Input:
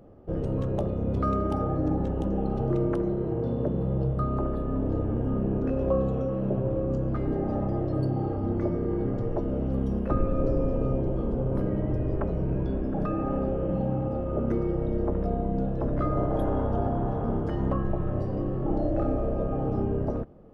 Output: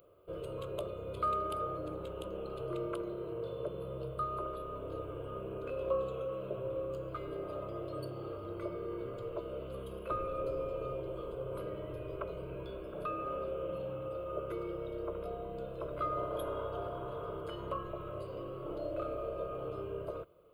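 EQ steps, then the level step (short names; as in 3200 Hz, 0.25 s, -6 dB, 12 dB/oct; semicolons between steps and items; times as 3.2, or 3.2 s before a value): tilt +4 dB/oct; fixed phaser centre 1200 Hz, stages 8; -2.5 dB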